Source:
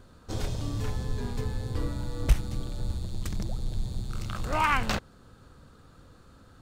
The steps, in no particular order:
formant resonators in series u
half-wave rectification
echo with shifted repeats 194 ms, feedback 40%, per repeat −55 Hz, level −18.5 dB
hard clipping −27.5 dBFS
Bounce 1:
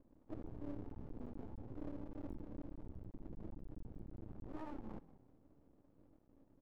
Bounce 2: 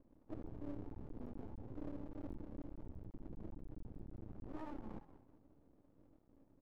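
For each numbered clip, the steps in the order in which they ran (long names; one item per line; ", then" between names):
hard clipping, then formant resonators in series, then echo with shifted repeats, then half-wave rectification
echo with shifted repeats, then hard clipping, then formant resonators in series, then half-wave rectification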